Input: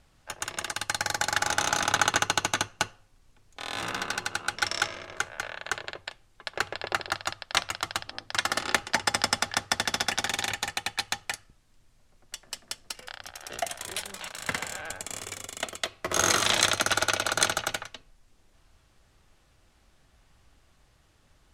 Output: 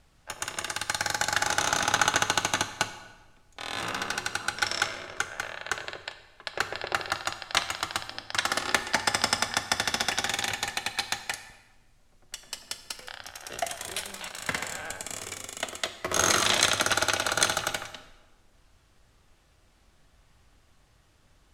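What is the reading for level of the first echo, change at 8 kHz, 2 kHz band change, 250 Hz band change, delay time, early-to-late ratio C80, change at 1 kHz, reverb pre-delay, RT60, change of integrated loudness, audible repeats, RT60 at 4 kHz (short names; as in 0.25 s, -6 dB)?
none, +0.5 dB, +0.5 dB, +0.5 dB, none, 13.5 dB, +0.5 dB, 12 ms, 1.3 s, +0.5 dB, none, 0.95 s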